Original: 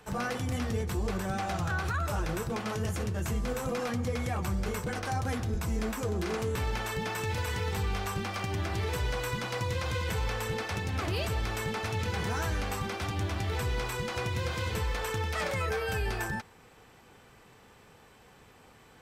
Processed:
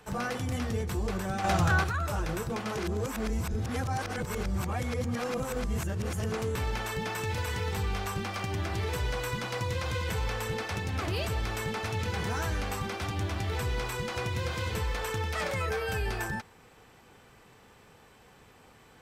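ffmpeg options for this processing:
ffmpeg -i in.wav -filter_complex "[0:a]asettb=1/sr,asplit=3[link_01][link_02][link_03];[link_01]atrim=end=1.444[link_04];[link_02]atrim=start=1.44:end=1.84,asetpts=PTS-STARTPTS,afade=type=in:duration=0.004:curve=qsin,afade=type=out:start_time=0.396:duration=0.004:curve=qsin,acontrast=71[link_05];[link_03]atrim=start=1.836[link_06];[link_04][link_05]acrossfade=duration=0.004:curve1=hsin:curve2=qsin[link_07];[link_07][link_06]acrossfade=duration=0.004:curve1=qsin:curve2=hsin,asplit=3[link_08][link_09][link_10];[link_08]atrim=end=2.772[link_11];[link_09]atrim=start=2.768:end=6.322,asetpts=PTS-STARTPTS,areverse[link_12];[link_10]atrim=start=6.318[link_13];[link_11][link_12]acrossfade=duration=0.004:curve1=hsin:curve2=hsin[link_14];[link_14][link_13]acrossfade=duration=0.004:curve1=hsin:curve2=hsin" out.wav

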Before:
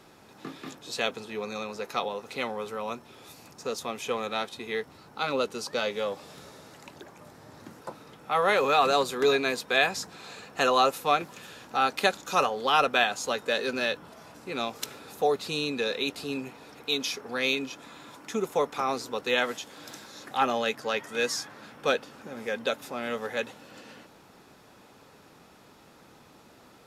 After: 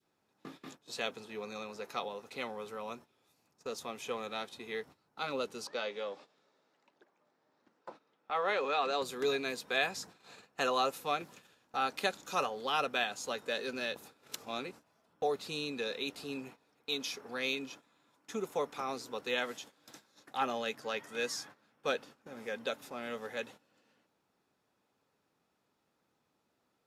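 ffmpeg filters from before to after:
ffmpeg -i in.wav -filter_complex "[0:a]asettb=1/sr,asplit=3[link_01][link_02][link_03];[link_01]atrim=end=5.674[link_04];[link_02]atrim=start=5.67:end=9.02,asetpts=PTS-STARTPTS,afade=type=in:duration=0.004:curve=qsin,afade=type=out:start_time=3.346:duration=0.004:curve=qsin,highpass=260,lowpass=4900[link_05];[link_03]atrim=start=9.016[link_06];[link_04][link_05]acrossfade=duration=0.004:curve1=hsin:curve2=qsin[link_07];[link_07][link_06]acrossfade=duration=0.004:curve1=qsin:curve2=hsin,asplit=3[link_08][link_09][link_10];[link_08]atrim=end=13.962[link_11];[link_09]atrim=start=13.958:end=15.222,asetpts=PTS-STARTPTS,areverse[link_12];[link_10]atrim=start=15.218[link_13];[link_11][link_12]acrossfade=duration=0.004:curve1=hsin:curve2=hsin[link_14];[link_14][link_13]acrossfade=duration=0.004:curve1=hsin:curve2=hsin,lowshelf=frequency=60:gain=-7.5,agate=range=-16dB:threshold=-43dB:ratio=16:detection=peak,adynamicequalizer=threshold=0.0158:dfrequency=1000:dqfactor=0.71:tfrequency=1000:tqfactor=0.71:attack=5:release=100:ratio=0.375:range=2:mode=cutabove:tftype=bell,volume=-7.5dB" out.wav

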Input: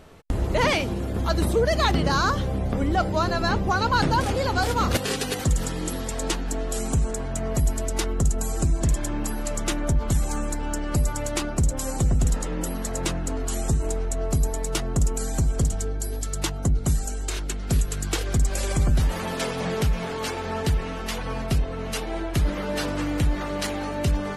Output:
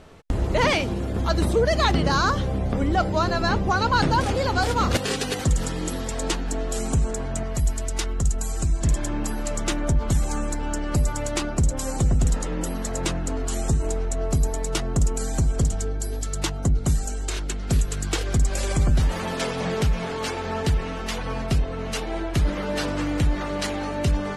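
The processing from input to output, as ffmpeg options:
ffmpeg -i in.wav -filter_complex "[0:a]asettb=1/sr,asplit=3[link_01][link_02][link_03];[link_01]atrim=end=7.434[link_04];[link_02]atrim=start=7.43:end=8.85,asetpts=PTS-STARTPTS,afade=type=in:duration=0.004:curve=qsin,afade=type=out:start_time=1.416:duration=0.004:curve=qsin,equalizer=frequency=360:width=0.37:gain=-6.5[link_05];[link_03]atrim=start=8.846[link_06];[link_04][link_05]acrossfade=duration=0.004:curve1=hsin:curve2=qsin[link_07];[link_07][link_06]acrossfade=duration=0.004:curve1=qsin:curve2=hsin,lowpass=9600,volume=1dB" out.wav

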